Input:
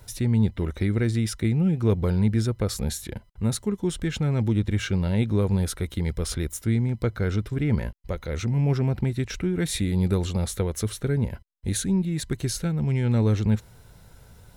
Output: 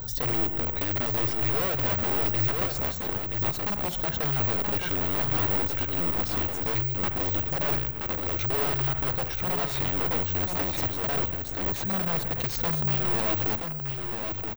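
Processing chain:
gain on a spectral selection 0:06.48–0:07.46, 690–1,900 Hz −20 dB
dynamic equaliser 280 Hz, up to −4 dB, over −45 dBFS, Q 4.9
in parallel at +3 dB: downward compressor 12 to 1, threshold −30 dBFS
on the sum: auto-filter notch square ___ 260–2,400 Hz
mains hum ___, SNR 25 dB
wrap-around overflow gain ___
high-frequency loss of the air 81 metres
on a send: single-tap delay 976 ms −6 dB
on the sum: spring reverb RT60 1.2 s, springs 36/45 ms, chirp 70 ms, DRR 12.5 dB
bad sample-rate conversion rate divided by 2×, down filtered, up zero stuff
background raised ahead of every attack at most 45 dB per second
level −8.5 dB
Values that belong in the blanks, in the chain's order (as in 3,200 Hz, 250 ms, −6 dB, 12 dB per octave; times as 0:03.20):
2 Hz, 50 Hz, 17 dB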